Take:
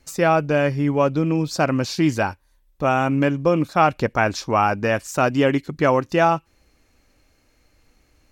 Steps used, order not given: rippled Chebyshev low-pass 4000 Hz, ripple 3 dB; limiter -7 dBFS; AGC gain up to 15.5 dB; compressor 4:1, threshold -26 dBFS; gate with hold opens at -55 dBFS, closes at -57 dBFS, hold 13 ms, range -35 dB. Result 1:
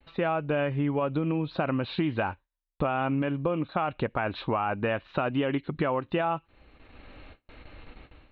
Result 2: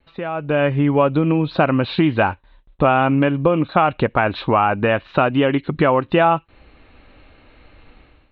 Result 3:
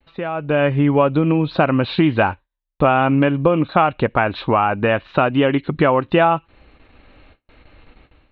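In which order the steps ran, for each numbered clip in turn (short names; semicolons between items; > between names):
rippled Chebyshev low-pass > gate with hold > AGC > limiter > compressor; limiter > compressor > gate with hold > rippled Chebyshev low-pass > AGC; rippled Chebyshev low-pass > gate with hold > compressor > limiter > AGC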